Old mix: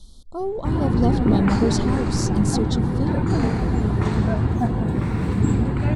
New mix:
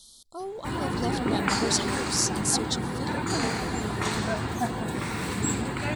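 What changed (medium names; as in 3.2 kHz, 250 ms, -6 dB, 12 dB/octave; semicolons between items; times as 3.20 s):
speech -4.5 dB; master: add tilt EQ +4 dB/octave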